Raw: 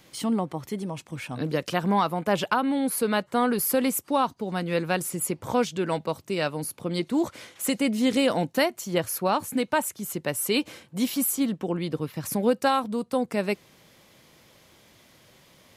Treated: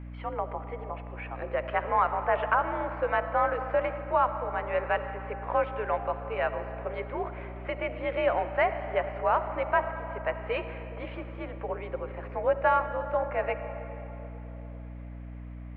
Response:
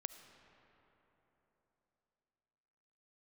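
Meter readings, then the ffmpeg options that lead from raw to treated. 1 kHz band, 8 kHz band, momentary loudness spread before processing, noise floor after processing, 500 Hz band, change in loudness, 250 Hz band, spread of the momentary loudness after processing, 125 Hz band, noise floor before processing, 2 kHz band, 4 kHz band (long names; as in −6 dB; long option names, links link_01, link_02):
+0.5 dB, below −40 dB, 8 LU, −41 dBFS, −1.5 dB, −3.5 dB, −16.0 dB, 14 LU, −4.5 dB, −58 dBFS, −0.5 dB, −15.0 dB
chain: -filter_complex "[0:a]highpass=frequency=440:width_type=q:width=0.5412,highpass=frequency=440:width_type=q:width=1.307,lowpass=frequency=2300:width_type=q:width=0.5176,lowpass=frequency=2300:width_type=q:width=0.7071,lowpass=frequency=2300:width_type=q:width=1.932,afreqshift=54[link_01];[1:a]atrim=start_sample=2205[link_02];[link_01][link_02]afir=irnorm=-1:irlink=0,aeval=exprs='val(0)+0.00708*(sin(2*PI*60*n/s)+sin(2*PI*2*60*n/s)/2+sin(2*PI*3*60*n/s)/3+sin(2*PI*4*60*n/s)/4+sin(2*PI*5*60*n/s)/5)':channel_layout=same,volume=3.5dB"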